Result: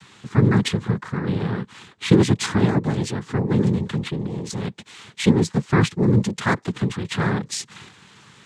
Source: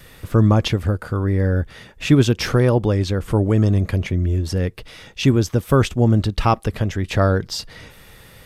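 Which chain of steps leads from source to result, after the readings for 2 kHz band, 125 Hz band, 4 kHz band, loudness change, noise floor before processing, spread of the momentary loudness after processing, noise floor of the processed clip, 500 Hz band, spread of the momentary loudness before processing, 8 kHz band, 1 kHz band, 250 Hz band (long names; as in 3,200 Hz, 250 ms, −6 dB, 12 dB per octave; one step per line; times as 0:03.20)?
+0.5 dB, −4.0 dB, −1.5 dB, −2.5 dB, −46 dBFS, 12 LU, −51 dBFS, −4.0 dB, 8 LU, +1.5 dB, −3.5 dB, −0.5 dB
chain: flat-topped bell 570 Hz −10 dB 1 octave
cochlear-implant simulation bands 6
level −1 dB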